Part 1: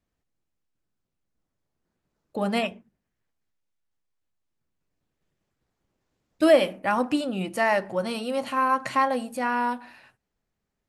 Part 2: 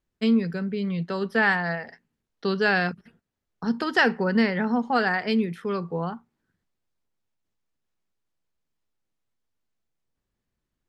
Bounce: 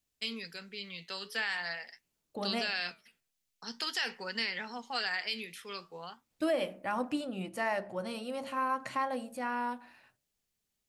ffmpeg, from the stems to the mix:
ffmpeg -i stem1.wav -i stem2.wav -filter_complex "[0:a]bandreject=frequency=68.02:width_type=h:width=4,bandreject=frequency=136.04:width_type=h:width=4,bandreject=frequency=204.06:width_type=h:width=4,bandreject=frequency=272.08:width_type=h:width=4,bandreject=frequency=340.1:width_type=h:width=4,bandreject=frequency=408.12:width_type=h:width=4,bandreject=frequency=476.14:width_type=h:width=4,bandreject=frequency=544.16:width_type=h:width=4,bandreject=frequency=612.18:width_type=h:width=4,bandreject=frequency=680.2:width_type=h:width=4,volume=-9dB[link_01];[1:a]highpass=frequency=1400:poles=1,aexciter=amount=4.7:drive=2.5:freq=2200,flanger=delay=3:depth=9.6:regen=-78:speed=0.46:shape=triangular,volume=-3dB,asplit=3[link_02][link_03][link_04];[link_02]atrim=end=7.25,asetpts=PTS-STARTPTS,afade=type=out:start_time=7.246:duration=0.004:curve=hsin[link_05];[link_03]atrim=start=7.25:end=8.11,asetpts=PTS-STARTPTS,volume=0[link_06];[link_04]atrim=start=8.11,asetpts=PTS-STARTPTS,afade=type=in:duration=0.004:curve=hsin[link_07];[link_05][link_06][link_07]concat=n=3:v=0:a=1[link_08];[link_01][link_08]amix=inputs=2:normalize=0,alimiter=limit=-22dB:level=0:latency=1:release=74" out.wav

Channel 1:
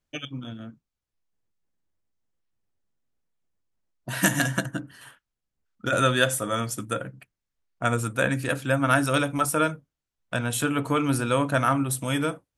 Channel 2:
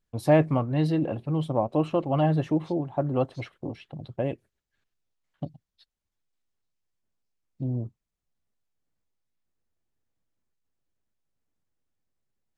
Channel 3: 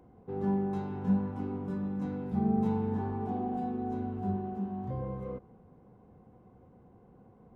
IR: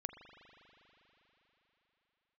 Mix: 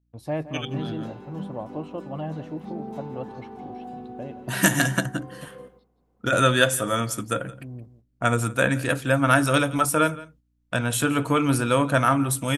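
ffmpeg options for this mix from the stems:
-filter_complex "[0:a]adelay=400,volume=2.5dB,asplit=2[link_01][link_02];[link_02]volume=-19.5dB[link_03];[1:a]aeval=exprs='val(0)+0.00251*(sin(2*PI*60*n/s)+sin(2*PI*2*60*n/s)/2+sin(2*PI*3*60*n/s)/3+sin(2*PI*4*60*n/s)/4+sin(2*PI*5*60*n/s)/5)':channel_layout=same,volume=-10dB,asplit=3[link_04][link_05][link_06];[link_05]volume=-17.5dB[link_07];[link_06]volume=-13.5dB[link_08];[2:a]highpass=250,highshelf=frequency=2700:gain=10,adelay=300,volume=-3.5dB,asplit=2[link_09][link_10];[link_10]volume=-14dB[link_11];[3:a]atrim=start_sample=2205[link_12];[link_07][link_12]afir=irnorm=-1:irlink=0[link_13];[link_03][link_08][link_11]amix=inputs=3:normalize=0,aecho=0:1:170:1[link_14];[link_01][link_04][link_09][link_13][link_14]amix=inputs=5:normalize=0,agate=range=-8dB:threshold=-53dB:ratio=16:detection=peak"

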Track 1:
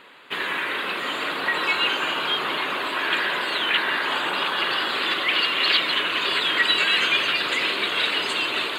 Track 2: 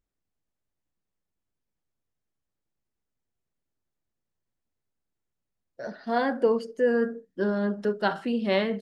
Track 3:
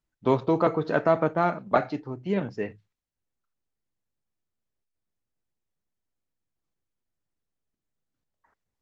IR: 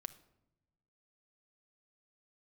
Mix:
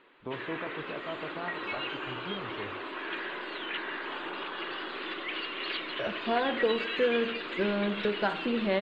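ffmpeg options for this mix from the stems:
-filter_complex "[0:a]equalizer=frequency=340:width=2:gain=8.5,volume=-13dB[link_01];[1:a]adelay=200,volume=1.5dB,asplit=2[link_02][link_03];[link_03]volume=-9dB[link_04];[2:a]alimiter=limit=-19dB:level=0:latency=1:release=402,volume=-8dB[link_05];[link_02][link_05]amix=inputs=2:normalize=0,asubboost=boost=9.5:cutoff=76,acompressor=threshold=-29dB:ratio=6,volume=0dB[link_06];[3:a]atrim=start_sample=2205[link_07];[link_04][link_07]afir=irnorm=-1:irlink=0[link_08];[link_01][link_06][link_08]amix=inputs=3:normalize=0,lowpass=3100"

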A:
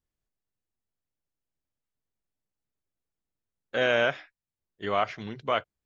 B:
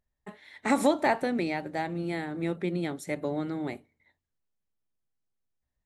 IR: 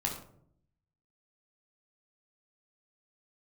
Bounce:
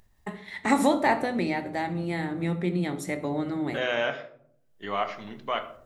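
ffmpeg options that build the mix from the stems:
-filter_complex "[0:a]highpass=180,volume=-6.5dB,asplit=2[link_01][link_02];[link_02]volume=-5dB[link_03];[1:a]agate=range=-33dB:threshold=-46dB:ratio=3:detection=peak,acompressor=mode=upward:threshold=-30dB:ratio=2.5,volume=-1.5dB,asplit=2[link_04][link_05];[link_05]volume=-6.5dB[link_06];[2:a]atrim=start_sample=2205[link_07];[link_03][link_06]amix=inputs=2:normalize=0[link_08];[link_08][link_07]afir=irnorm=-1:irlink=0[link_09];[link_01][link_04][link_09]amix=inputs=3:normalize=0"

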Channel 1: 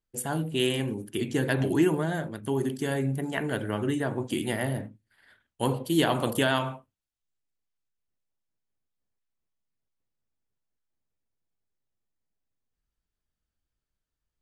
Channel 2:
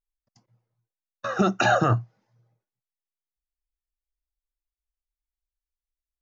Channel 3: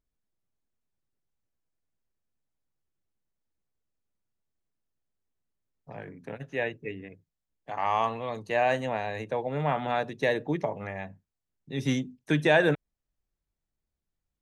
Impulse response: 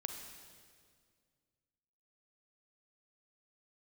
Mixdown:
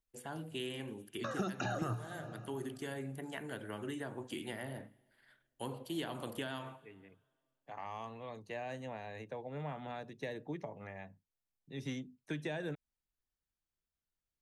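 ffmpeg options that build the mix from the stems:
-filter_complex "[0:a]lowshelf=frequency=320:gain=-10,volume=-8dB,asplit=3[link_01][link_02][link_03];[link_02]volume=-20.5dB[link_04];[1:a]volume=-4dB,asplit=2[link_05][link_06];[link_06]volume=-8.5dB[link_07];[2:a]volume=-11dB[link_08];[link_03]apad=whole_len=635758[link_09];[link_08][link_09]sidechaincompress=threshold=-42dB:ratio=8:attack=16:release=663[link_10];[3:a]atrim=start_sample=2205[link_11];[link_04][link_07]amix=inputs=2:normalize=0[link_12];[link_12][link_11]afir=irnorm=-1:irlink=0[link_13];[link_01][link_05][link_10][link_13]amix=inputs=4:normalize=0,acrossover=split=340|4400[link_14][link_15][link_16];[link_14]acompressor=threshold=-39dB:ratio=4[link_17];[link_15]acompressor=threshold=-42dB:ratio=4[link_18];[link_16]acompressor=threshold=-57dB:ratio=4[link_19];[link_17][link_18][link_19]amix=inputs=3:normalize=0"

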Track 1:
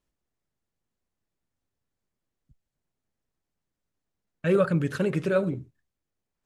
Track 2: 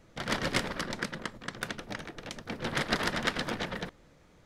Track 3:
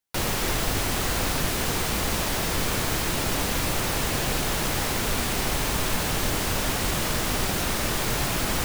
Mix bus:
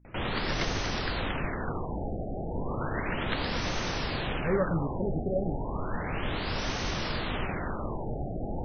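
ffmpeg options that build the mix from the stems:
ffmpeg -i stem1.wav -i stem2.wav -i stem3.wav -filter_complex "[0:a]aeval=exprs='val(0)+0.00224*(sin(2*PI*60*n/s)+sin(2*PI*2*60*n/s)/2+sin(2*PI*3*60*n/s)/3+sin(2*PI*4*60*n/s)/4+sin(2*PI*5*60*n/s)/5)':channel_layout=same,volume=-6dB[link_01];[1:a]acompressor=mode=upward:threshold=-32dB:ratio=2.5,adelay=50,volume=-5dB[link_02];[2:a]volume=-5dB[link_03];[link_01][link_02][link_03]amix=inputs=3:normalize=0,afftfilt=real='re*lt(b*sr/1024,800*pow(6500/800,0.5+0.5*sin(2*PI*0.33*pts/sr)))':imag='im*lt(b*sr/1024,800*pow(6500/800,0.5+0.5*sin(2*PI*0.33*pts/sr)))':win_size=1024:overlap=0.75" out.wav

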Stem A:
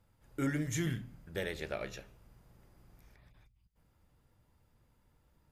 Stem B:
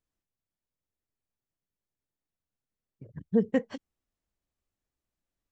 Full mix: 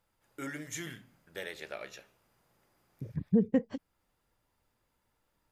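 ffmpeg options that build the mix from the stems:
ffmpeg -i stem1.wav -i stem2.wav -filter_complex "[0:a]highpass=frequency=600:poles=1,volume=-0.5dB[link_01];[1:a]lowshelf=frequency=490:gain=11.5,volume=-3.5dB[link_02];[link_01][link_02]amix=inputs=2:normalize=0,alimiter=limit=-16.5dB:level=0:latency=1:release=497" out.wav

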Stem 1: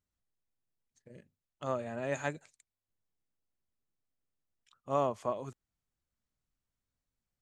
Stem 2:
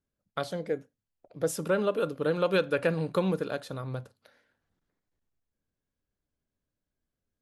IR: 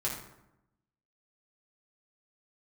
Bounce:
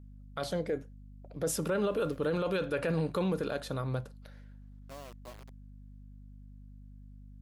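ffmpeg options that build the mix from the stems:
-filter_complex "[0:a]acrossover=split=200|740[link_01][link_02][link_03];[link_01]acompressor=threshold=-49dB:ratio=4[link_04];[link_02]acompressor=threshold=-35dB:ratio=4[link_05];[link_03]acompressor=threshold=-41dB:ratio=4[link_06];[link_04][link_05][link_06]amix=inputs=3:normalize=0,acrusher=bits=5:mix=0:aa=0.000001,volume=-13.5dB[link_07];[1:a]aeval=exprs='val(0)+0.00282*(sin(2*PI*50*n/s)+sin(2*PI*2*50*n/s)/2+sin(2*PI*3*50*n/s)/3+sin(2*PI*4*50*n/s)/4+sin(2*PI*5*50*n/s)/5)':channel_layout=same,volume=2dB,asplit=2[link_08][link_09];[link_09]apad=whole_len=326953[link_10];[link_07][link_10]sidechaincompress=threshold=-34dB:ratio=8:attack=5.1:release=461[link_11];[link_11][link_08]amix=inputs=2:normalize=0,alimiter=limit=-23dB:level=0:latency=1:release=11"

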